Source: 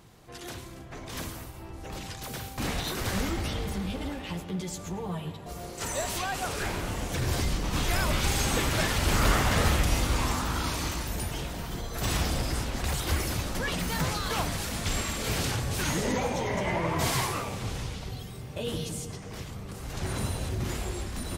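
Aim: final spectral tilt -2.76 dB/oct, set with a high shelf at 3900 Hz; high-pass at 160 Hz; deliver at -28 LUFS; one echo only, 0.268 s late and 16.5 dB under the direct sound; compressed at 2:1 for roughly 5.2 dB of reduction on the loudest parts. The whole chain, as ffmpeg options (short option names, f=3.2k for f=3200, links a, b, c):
-af "highpass=160,highshelf=f=3.9k:g=7.5,acompressor=threshold=-31dB:ratio=2,aecho=1:1:268:0.15,volume=4dB"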